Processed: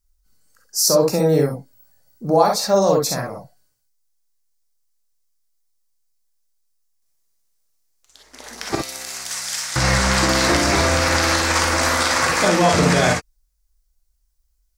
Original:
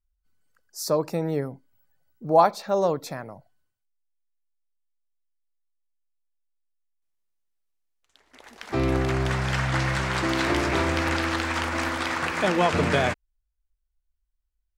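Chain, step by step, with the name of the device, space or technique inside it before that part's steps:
over-bright horn tweeter (high shelf with overshoot 4,000 Hz +7.5 dB, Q 1.5; brickwall limiter −15.5 dBFS, peak gain reduction 10 dB)
0:08.75–0:09.76: first difference
reverb whose tail is shaped and stops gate 80 ms rising, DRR 0.5 dB
level +7 dB

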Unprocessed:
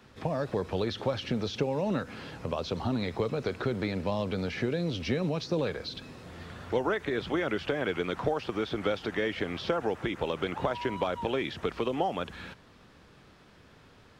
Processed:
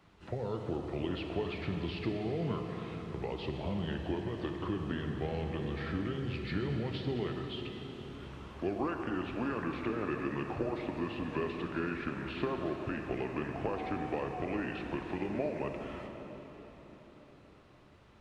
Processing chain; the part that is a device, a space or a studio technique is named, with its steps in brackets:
slowed and reverbed (speed change −22%; convolution reverb RT60 4.6 s, pre-delay 27 ms, DRR 3.5 dB)
level −6.5 dB

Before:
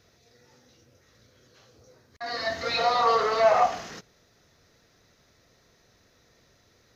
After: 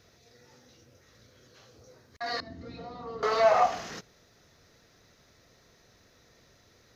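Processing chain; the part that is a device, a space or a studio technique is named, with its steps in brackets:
parallel compression (in parallel at −6 dB: downward compressor, threshold −34 dBFS, peak gain reduction 17.5 dB)
0:02.40–0:03.23: on the sum: drawn EQ curve 310 Hz 0 dB, 550 Hz −18 dB, 1,900 Hz −24 dB
level −2.5 dB

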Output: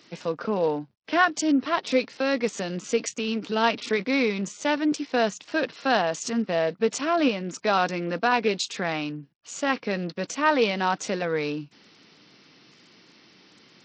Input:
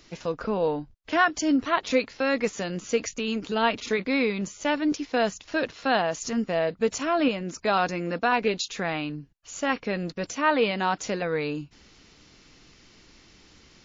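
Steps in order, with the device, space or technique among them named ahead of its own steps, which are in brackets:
0:01.25–0:03.43: dynamic equaliser 1,500 Hz, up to −3 dB, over −35 dBFS, Q 0.83
Bluetooth headset (high-pass filter 140 Hz 24 dB per octave; downsampling to 16,000 Hz; level +1 dB; SBC 64 kbit/s 44,100 Hz)

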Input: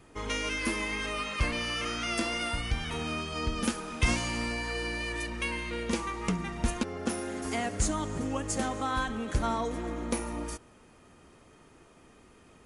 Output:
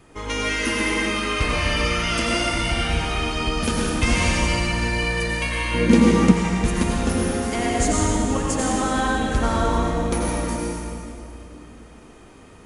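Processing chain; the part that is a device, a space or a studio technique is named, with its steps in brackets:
stairwell (convolution reverb RT60 2.6 s, pre-delay 80 ms, DRR −3.5 dB)
0:05.74–0:06.32: parametric band 250 Hz +14 dB 1.7 octaves
level +4.5 dB

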